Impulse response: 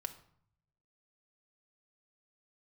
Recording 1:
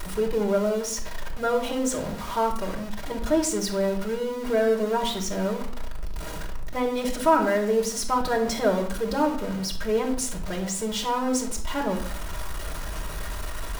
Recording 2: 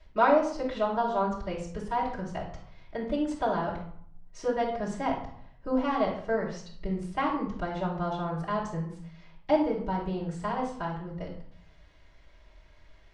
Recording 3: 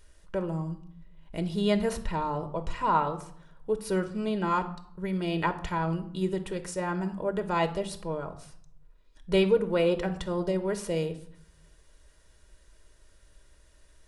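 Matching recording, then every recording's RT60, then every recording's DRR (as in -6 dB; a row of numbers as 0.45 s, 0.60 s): 3; 0.60 s, 0.60 s, 0.60 s; 0.0 dB, -6.0 dB, 7.0 dB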